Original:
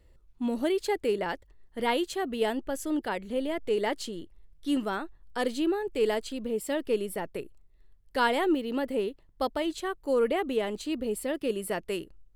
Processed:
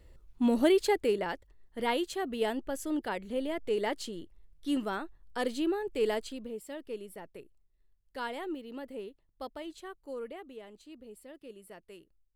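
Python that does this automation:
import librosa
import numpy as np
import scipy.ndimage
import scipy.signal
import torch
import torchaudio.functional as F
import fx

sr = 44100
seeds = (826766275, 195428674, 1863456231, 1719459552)

y = fx.gain(x, sr, db=fx.line((0.73, 3.5), (1.29, -3.0), (6.23, -3.0), (6.65, -12.0), (9.94, -12.0), (10.55, -18.5)))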